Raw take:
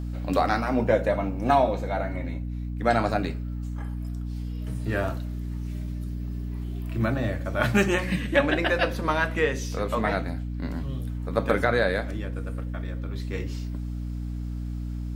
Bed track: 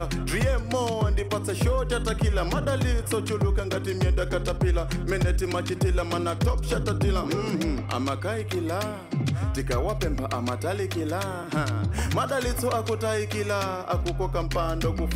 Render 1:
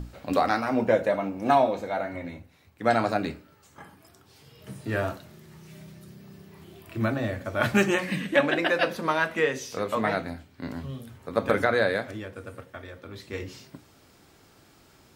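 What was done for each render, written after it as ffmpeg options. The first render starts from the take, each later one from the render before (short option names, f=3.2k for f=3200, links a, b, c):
-af "bandreject=f=60:t=h:w=6,bandreject=f=120:t=h:w=6,bandreject=f=180:t=h:w=6,bandreject=f=240:t=h:w=6,bandreject=f=300:t=h:w=6"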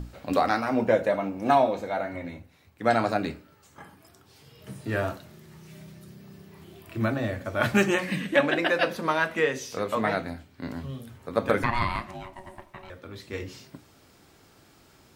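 -filter_complex "[0:a]asettb=1/sr,asplit=3[a][b][c];[a]atrim=end=11.634[d];[b]atrim=start=11.63:end=12.9,asetpts=PTS-STARTPTS,afade=t=in:d=0.004:c=qsin,afade=t=out:st=1.266:d=0.004:c=qsin,aeval=exprs='val(0)*sin(2*PI*470*n/s)':c=same[e];[c]atrim=start=12.896[f];[d][e]acrossfade=d=0.004:c1=hsin:c2=qsin[g];[g][f]acrossfade=d=0.004:c1=qsin:c2=hsin"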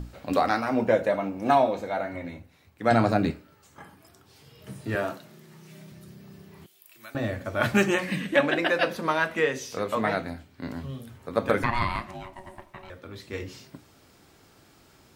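-filter_complex "[0:a]asettb=1/sr,asplit=3[a][b][c];[a]atrim=end=2.914[d];[b]atrim=start=2.91:end=3.31,asetpts=PTS-STARTPTS,afade=t=in:d=0.004:c=qsin,afade=t=out:st=0.396:d=0.004:c=qsin,lowshelf=f=270:g=11[e];[c]atrim=start=3.306[f];[d][e]acrossfade=d=0.004:c1=hsin:c2=qsin[g];[g][f]acrossfade=d=0.004:c1=qsin:c2=hsin,asettb=1/sr,asplit=3[h][i][j];[h]atrim=end=4.954[k];[i]atrim=start=4.95:end=5.92,asetpts=PTS-STARTPTS,afade=t=in:d=0.004:c=qsin,afade=t=out:st=0.966:d=0.004:c=qsin,highpass=f=140:w=0.5412,highpass=f=140:w=1.3066[l];[j]atrim=start=5.916[m];[k][l]acrossfade=d=0.004:c1=hsin:c2=qsin[n];[n][m]acrossfade=d=0.004:c1=qsin:c2=hsin,asettb=1/sr,asplit=3[o][p][q];[o]atrim=end=6.664[r];[p]atrim=start=6.66:end=7.15,asetpts=PTS-STARTPTS,afade=t=in:d=0.004:c=qsin,afade=t=out:st=0.486:d=0.004:c=qsin,aderivative[s];[q]atrim=start=7.146[t];[r][s]acrossfade=d=0.004:c1=hsin:c2=qsin[u];[u][t]acrossfade=d=0.004:c1=qsin:c2=hsin"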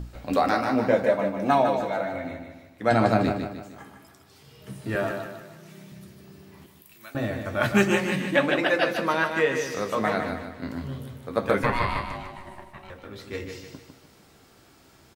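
-filter_complex "[0:a]asplit=2[a][b];[b]adelay=15,volume=-11dB[c];[a][c]amix=inputs=2:normalize=0,asplit=2[d][e];[e]aecho=0:1:152|304|456|608|760:0.473|0.203|0.0875|0.0376|0.0162[f];[d][f]amix=inputs=2:normalize=0"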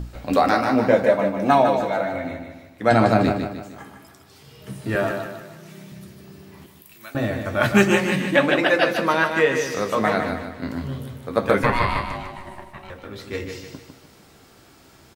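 -af "volume=4.5dB,alimiter=limit=-3dB:level=0:latency=1"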